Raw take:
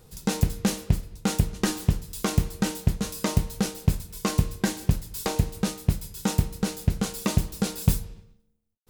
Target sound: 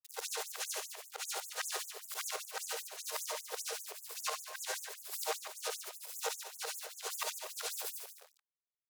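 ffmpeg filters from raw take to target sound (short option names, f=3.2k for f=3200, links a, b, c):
-filter_complex "[0:a]afftfilt=real='re':imag='-im':win_size=8192:overlap=0.75,highshelf=f=2.3k:g=-3,aeval=exprs='val(0)*gte(abs(val(0)),0.00501)':c=same,acrossover=split=200[a][b];[b]acompressor=threshold=-29dB:ratio=8[c];[a][c]amix=inputs=2:normalize=0,asubboost=boost=5.5:cutoff=59,acompressor=threshold=-23dB:ratio=16,asplit=2[d][e];[e]adelay=145.8,volume=-7dB,highshelf=f=4k:g=-3.28[f];[d][f]amix=inputs=2:normalize=0,afftfilt=real='re*gte(b*sr/1024,380*pow(6500/380,0.5+0.5*sin(2*PI*5.1*pts/sr)))':imag='im*gte(b*sr/1024,380*pow(6500/380,0.5+0.5*sin(2*PI*5.1*pts/sr)))':win_size=1024:overlap=0.75,volume=3dB"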